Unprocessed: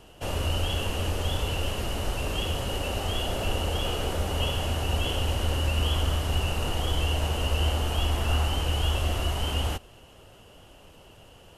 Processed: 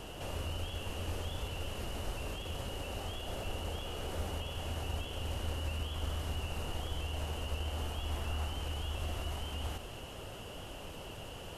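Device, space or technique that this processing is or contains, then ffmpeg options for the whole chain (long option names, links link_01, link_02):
de-esser from a sidechain: -filter_complex "[0:a]asplit=2[link_01][link_02];[link_02]highpass=frequency=5800:poles=1,apad=whole_len=510457[link_03];[link_01][link_03]sidechaincompress=threshold=-55dB:ratio=12:attack=0.61:release=21,volume=6dB"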